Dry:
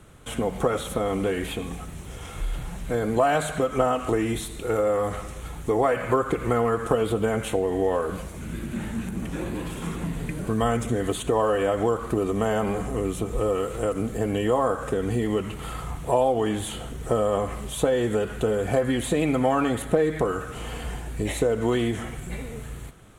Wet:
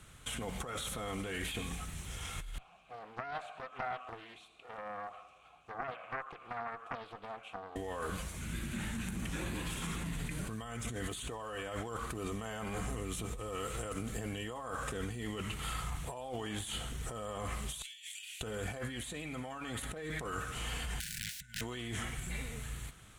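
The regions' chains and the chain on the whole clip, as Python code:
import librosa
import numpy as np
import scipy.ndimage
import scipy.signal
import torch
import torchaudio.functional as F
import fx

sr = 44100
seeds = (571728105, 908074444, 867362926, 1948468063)

y = fx.chain(x, sr, fx.vowel_filter(vowel='a'),
    fx.doppler_dist(depth_ms=0.57), at=(2.58, 7.76))
y = fx.chain(y, sr, fx.steep_highpass(hz=2300.0, slope=48),
    fx.over_compress(threshold_db=-47.0, ratio=-0.5), at=(17.82, 18.41))
y = fx.chain(y, sr, fx.over_compress(threshold_db=-32.0, ratio=-1.0),
    fx.overflow_wrap(gain_db=27.5),
    fx.brickwall_bandstop(low_hz=230.0, high_hz=1400.0), at=(21.0, 21.61))
y = fx.tone_stack(y, sr, knobs='5-5-5')
y = fx.over_compress(y, sr, threshold_db=-45.0, ratio=-1.0)
y = fx.high_shelf(y, sr, hz=9800.0, db=-7.0)
y = F.gain(torch.from_numpy(y), 6.0).numpy()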